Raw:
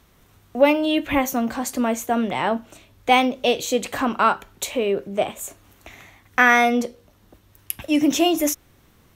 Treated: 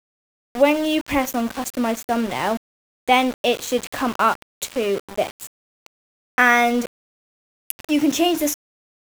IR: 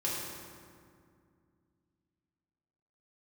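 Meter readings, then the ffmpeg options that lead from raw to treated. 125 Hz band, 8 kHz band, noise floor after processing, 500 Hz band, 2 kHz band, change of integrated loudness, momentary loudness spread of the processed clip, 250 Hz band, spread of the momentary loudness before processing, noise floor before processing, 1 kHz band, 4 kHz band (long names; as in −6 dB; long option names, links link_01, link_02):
−1.0 dB, −0.5 dB, below −85 dBFS, 0.0 dB, 0.0 dB, 0.0 dB, 14 LU, 0.0 dB, 14 LU, −57 dBFS, 0.0 dB, 0.0 dB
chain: -af "aeval=exprs='val(0)*gte(abs(val(0)),0.0422)':channel_layout=same"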